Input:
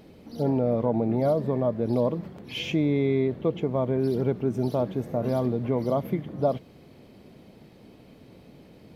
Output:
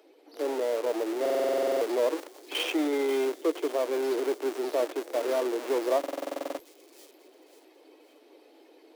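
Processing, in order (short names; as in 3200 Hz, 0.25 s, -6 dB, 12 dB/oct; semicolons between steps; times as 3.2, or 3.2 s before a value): bin magnitudes rounded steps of 15 dB; in parallel at -4.5 dB: Schmitt trigger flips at -32 dBFS; on the sum: vocal rider 2 s; steep high-pass 300 Hz 72 dB/oct; on a send: thin delay 0.538 s, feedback 35%, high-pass 4700 Hz, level -8.5 dB; on the sum: stuck buffer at 1.21/5.99, samples 2048, times 12; gain -2 dB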